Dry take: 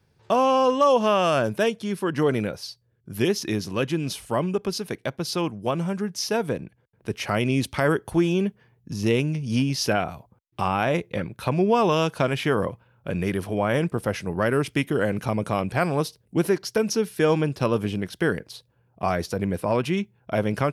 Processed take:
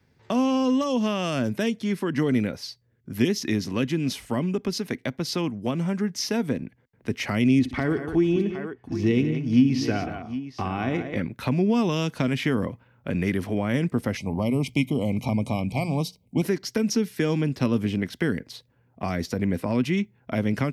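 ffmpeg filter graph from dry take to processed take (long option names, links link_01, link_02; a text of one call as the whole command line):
ffmpeg -i in.wav -filter_complex "[0:a]asettb=1/sr,asplit=3[link_01][link_02][link_03];[link_01]atrim=end=7.594[link_04];[link_02]atrim=start=7.59:end=11.16,asetpts=PTS-STARTPTS,afade=type=in:duration=0.004:curve=qsin,afade=type=out:start_time=3.566:duration=0.004:curve=qsin,aemphasis=mode=reproduction:type=75kf,aecho=1:1:2.7:0.38,atrim=end_sample=157437,aecho=1:1:59|117|181|762:0.2|0.112|0.266|0.188,atrim=end_sample=157437[link_05];[link_03]atrim=start=11.156[link_06];[link_04][link_05]acrossfade=duration=0.004:curve1=hsin:curve2=qsin[link_07];[link_07][link_06]acrossfade=duration=0.004:curve1=qsin:curve2=hsin,asettb=1/sr,asplit=3[link_08][link_09][link_10];[link_08]atrim=end=14.174[link_11];[link_09]atrim=start=14.17:end=16.42,asetpts=PTS-STARTPTS,afade=type=in:duration=0.004:curve=qsin,afade=type=out:start_time=2.246:duration=0.004:curve=qsin,asuperstop=centerf=1600:order=12:qfactor=1.7,bandreject=frequency=60:width_type=h:width=6,bandreject=frequency=120:width_type=h:width=6,bandreject=frequency=180:width_type=h:width=6,aecho=1:1:1.3:0.39,atrim=end_sample=99225[link_12];[link_10]atrim=start=16.416[link_13];[link_11][link_12]acrossfade=duration=0.004:curve1=hsin:curve2=qsin[link_14];[link_14][link_13]acrossfade=duration=0.004:curve1=qsin:curve2=hsin,equalizer=frequency=250:width_type=o:width=0.33:gain=10,equalizer=frequency=2000:width_type=o:width=0.33:gain=8,equalizer=frequency=10000:width_type=o:width=0.33:gain=-8,acrossover=split=320|3000[link_15][link_16][link_17];[link_16]acompressor=threshold=-30dB:ratio=4[link_18];[link_15][link_18][link_17]amix=inputs=3:normalize=0" out.wav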